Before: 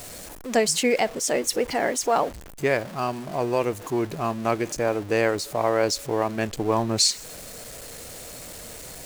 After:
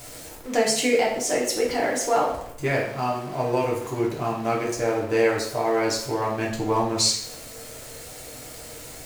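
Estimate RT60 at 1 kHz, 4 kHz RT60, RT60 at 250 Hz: 0.70 s, 0.60 s, 0.70 s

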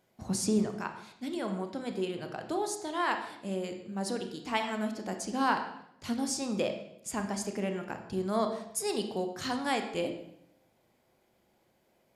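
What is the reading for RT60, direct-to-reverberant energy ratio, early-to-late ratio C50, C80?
0.75 s, 5.0 dB, 8.0 dB, 10.0 dB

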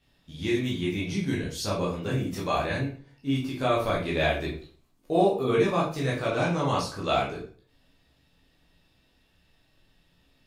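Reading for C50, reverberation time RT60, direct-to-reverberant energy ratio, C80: 5.5 dB, 0.45 s, −5.5 dB, 10.5 dB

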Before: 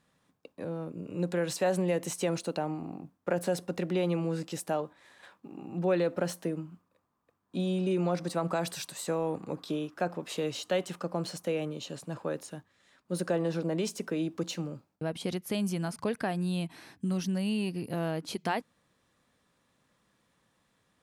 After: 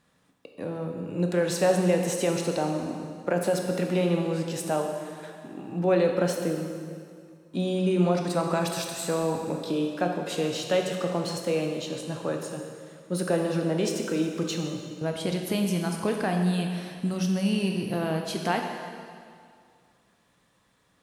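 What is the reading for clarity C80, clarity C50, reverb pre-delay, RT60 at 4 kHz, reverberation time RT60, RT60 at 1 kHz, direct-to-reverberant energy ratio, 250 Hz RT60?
5.0 dB, 4.0 dB, 11 ms, 2.0 s, 2.1 s, 2.2 s, 2.5 dB, 2.1 s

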